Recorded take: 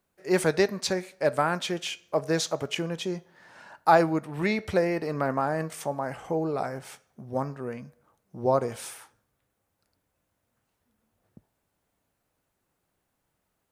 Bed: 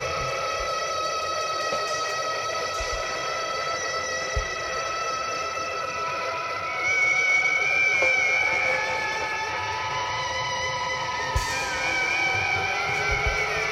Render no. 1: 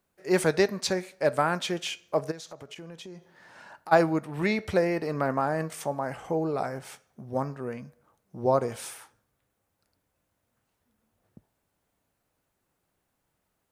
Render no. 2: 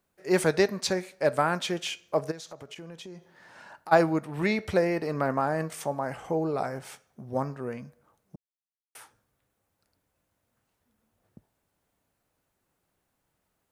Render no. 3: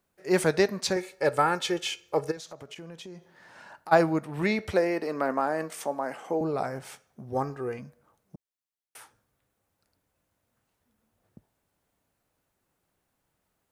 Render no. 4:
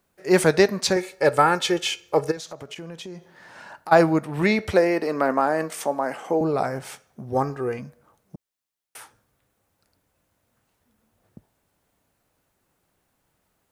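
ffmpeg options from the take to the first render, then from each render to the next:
-filter_complex "[0:a]asplit=3[a][b][c];[a]afade=t=out:st=2.3:d=0.02[d];[b]acompressor=threshold=-42dB:ratio=4:attack=3.2:release=140:knee=1:detection=peak,afade=t=in:st=2.3:d=0.02,afade=t=out:st=3.91:d=0.02[e];[c]afade=t=in:st=3.91:d=0.02[f];[d][e][f]amix=inputs=3:normalize=0"
-filter_complex "[0:a]asplit=3[a][b][c];[a]atrim=end=8.36,asetpts=PTS-STARTPTS,afade=t=out:st=8.356:d=0.004:c=hsin[d];[b]atrim=start=8.36:end=8.95,asetpts=PTS-STARTPTS,volume=0[e];[c]atrim=start=8.95,asetpts=PTS-STARTPTS,afade=t=in:d=0.004:c=hsin[f];[d][e][f]concat=n=3:v=0:a=1"
-filter_complex "[0:a]asettb=1/sr,asplit=3[a][b][c];[a]atrim=end=0.964[d];[b]atrim=start=0.96:end=2.37,asetpts=PTS-STARTPTS,afade=t=in:d=0.004:c=qsin,afade=t=out:st=1.406:d=0.004:c=qsin,aecho=1:1:2.3:0.65,atrim=end_sample=62181[e];[c]atrim=start=2.366[f];[d][e]acrossfade=d=0.004:c1=hsin:c2=qsin[g];[g][f]acrossfade=d=0.004:c1=qsin:c2=hsin,asettb=1/sr,asplit=3[h][i][j];[h]atrim=end=4.724[k];[i]atrim=start=4.72:end=6.41,asetpts=PTS-STARTPTS,afade=t=in:d=0.004:c=qsin,afade=t=out:st=1.686:d=0.004:c=qsin,highpass=f=210:w=0.5412,highpass=f=210:w=1.3066[l];[j]atrim=start=6.406[m];[k][l]acrossfade=d=0.004:c1=hsin:c2=qsin[n];[n][m]acrossfade=d=0.004:c1=qsin:c2=hsin,asettb=1/sr,asplit=3[o][p][q];[o]atrim=end=7.324[r];[p]atrim=start=7.32:end=7.79,asetpts=PTS-STARTPTS,afade=t=in:d=0.004:c=qsin,afade=t=out:st=0.466:d=0.004:c=qsin,aecho=1:1:2.5:0.65,atrim=end_sample=20727[s];[q]atrim=start=7.786[t];[r][s]acrossfade=d=0.004:c1=hsin:c2=qsin[u];[u][t]acrossfade=d=0.004:c1=qsin:c2=hsin"
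-af "volume=6dB,alimiter=limit=-2dB:level=0:latency=1"

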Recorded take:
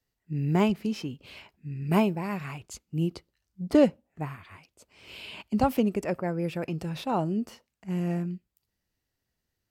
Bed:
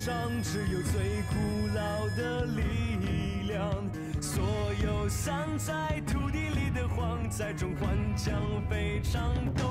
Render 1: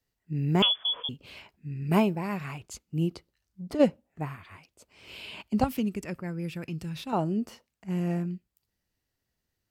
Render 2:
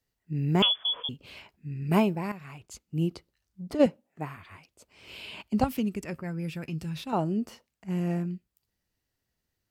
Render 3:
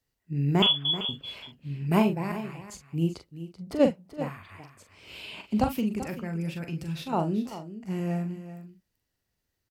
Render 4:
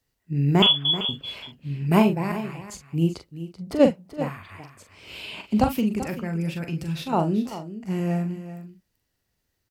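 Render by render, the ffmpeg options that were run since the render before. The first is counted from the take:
-filter_complex "[0:a]asettb=1/sr,asplit=3[a][b][c];[a]atrim=end=0.624[d];[b]atrim=start=0.62:end=1.09,asetpts=PTS-STARTPTS,afade=t=in:d=0.004:c=qsin,afade=t=out:st=0.466:d=0.004:c=qsin,lowpass=f=3.1k:t=q:w=0.5098,lowpass=f=3.1k:t=q:w=0.6013,lowpass=f=3.1k:t=q:w=0.9,lowpass=f=3.1k:t=q:w=2.563,afreqshift=-3600[e];[c]atrim=start=1.086[f];[d][e]acrossfade=d=0.004:c1=hsin:c2=qsin[g];[g][f]acrossfade=d=0.004:c1=qsin:c2=hsin,asplit=3[h][i][j];[h]afade=t=out:st=3.15:d=0.02[k];[i]acompressor=threshold=-39dB:ratio=2:attack=3.2:release=140:knee=1:detection=peak,afade=t=in:st=3.15:d=0.02,afade=t=out:st=3.79:d=0.02[l];[j]afade=t=in:st=3.79:d=0.02[m];[k][l][m]amix=inputs=3:normalize=0,asettb=1/sr,asplit=3[n][o][p];[n]atrim=end=5.644[q];[o]atrim=start=5.64:end=7.13,asetpts=PTS-STARTPTS,afade=t=in:d=0.004:c=qsin,afade=t=out:st=1.486:d=0.004:c=qsin,equalizer=f=650:t=o:w=1.8:g=-13[r];[p]atrim=start=7.126[s];[q][r]acrossfade=d=0.004:c1=hsin:c2=qsin[t];[t][s]acrossfade=d=0.004:c1=qsin:c2=hsin"
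-filter_complex "[0:a]asettb=1/sr,asplit=3[a][b][c];[a]atrim=end=3.864[d];[b]atrim=start=3.86:end=4.37,asetpts=PTS-STARTPTS,afade=t=in:d=0.004:c=qsin,afade=t=out:st=0.506:d=0.004:c=qsin,highpass=160[e];[c]atrim=start=4.366[f];[d][e]acrossfade=d=0.004:c1=hsin:c2=qsin[g];[g][f]acrossfade=d=0.004:c1=qsin:c2=hsin,asettb=1/sr,asplit=3[h][i][j];[h]atrim=end=6.094[k];[i]atrim=start=6.09:end=6.99,asetpts=PTS-STARTPTS,afade=t=in:d=0.004:c=qsin,afade=t=out:st=0.896:d=0.004:c=qsin,asplit=2[l][m];[m]adelay=13,volume=-11dB[n];[l][n]amix=inputs=2:normalize=0,atrim=end_sample=39690[o];[j]atrim=start=6.986[p];[k][o]acrossfade=d=0.004:c1=hsin:c2=qsin[q];[q][p]acrossfade=d=0.004:c1=qsin:c2=hsin,asplit=2[r][s];[r]atrim=end=2.32,asetpts=PTS-STARTPTS,afade=t=out:st=2.316:d=0.004:c=hsin:silence=0.251189[t];[s]atrim=start=2.32,asetpts=PTS-STARTPTS,afade=t=in:d=0.68:silence=0.251189[u];[t][u]concat=n=2:v=0:a=1"
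-filter_complex "[0:a]asplit=2[a][b];[b]adelay=42,volume=-7.5dB[c];[a][c]amix=inputs=2:normalize=0,aecho=1:1:385:0.224"
-af "volume=4.5dB"

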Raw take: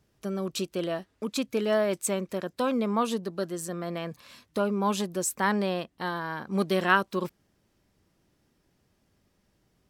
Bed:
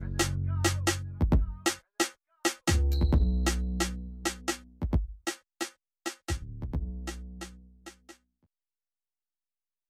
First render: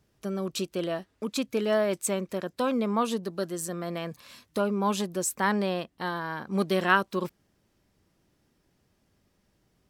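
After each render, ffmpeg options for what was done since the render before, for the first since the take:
-filter_complex "[0:a]asettb=1/sr,asplit=3[a][b][c];[a]atrim=end=3.234[d];[b]atrim=start=3.23:end=4.61,asetpts=PTS-STARTPTS,afade=t=in:d=0.004:c=qsin,afade=t=out:st=1.376:d=0.004:c=qsin,highshelf=f=5.6k:g=4[e];[c]atrim=start=4.606[f];[d][e]acrossfade=d=0.004:c1=hsin:c2=qsin[g];[g][f]acrossfade=d=0.004:c1=qsin:c2=hsin"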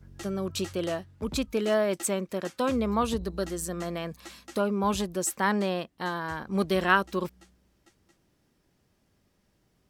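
-filter_complex "[1:a]volume=-15.5dB[a];[0:a][a]amix=inputs=2:normalize=0"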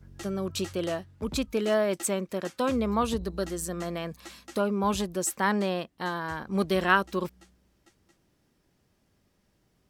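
-af anull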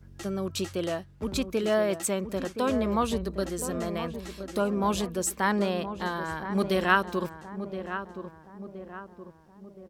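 -filter_complex "[0:a]asplit=2[a][b];[b]adelay=1021,lowpass=f=1.3k:p=1,volume=-9dB,asplit=2[c][d];[d]adelay=1021,lowpass=f=1.3k:p=1,volume=0.51,asplit=2[e][f];[f]adelay=1021,lowpass=f=1.3k:p=1,volume=0.51,asplit=2[g][h];[h]adelay=1021,lowpass=f=1.3k:p=1,volume=0.51,asplit=2[i][j];[j]adelay=1021,lowpass=f=1.3k:p=1,volume=0.51,asplit=2[k][l];[l]adelay=1021,lowpass=f=1.3k:p=1,volume=0.51[m];[a][c][e][g][i][k][m]amix=inputs=7:normalize=0"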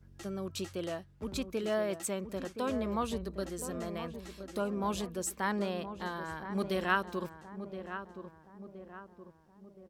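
-af "volume=-7dB"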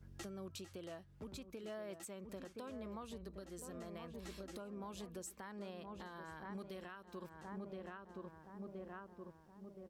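-af "acompressor=threshold=-43dB:ratio=6,alimiter=level_in=14.5dB:limit=-24dB:level=0:latency=1:release=351,volume=-14.5dB"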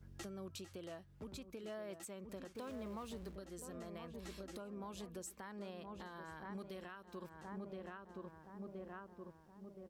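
-filter_complex "[0:a]asettb=1/sr,asplit=3[a][b][c];[a]atrim=end=2.554[d];[b]atrim=start=2.55:end=3.36,asetpts=PTS-STARTPTS,afade=t=in:d=0.004:c=qsin,afade=t=out:st=0.806:d=0.004:c=qsin,aeval=exprs='val(0)+0.5*0.00178*sgn(val(0))':c=same[e];[c]atrim=start=3.356[f];[d][e]acrossfade=d=0.004:c1=hsin:c2=qsin[g];[g][f]acrossfade=d=0.004:c1=qsin:c2=hsin"

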